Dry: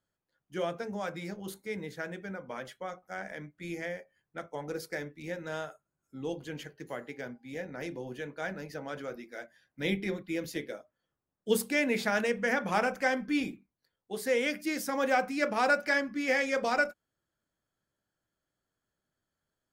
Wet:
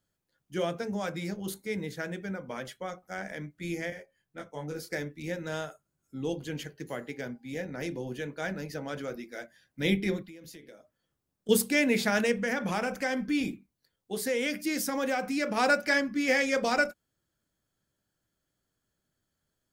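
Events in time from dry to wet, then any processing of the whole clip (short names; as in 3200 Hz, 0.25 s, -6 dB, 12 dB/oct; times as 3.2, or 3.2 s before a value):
3.9–4.91 detuned doubles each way 15 cents
10.22–11.49 compressor, threshold -50 dBFS
12.34–15.57 compressor 2:1, threshold -30 dBFS
whole clip: bell 1000 Hz -6 dB 2.9 oct; gain +6.5 dB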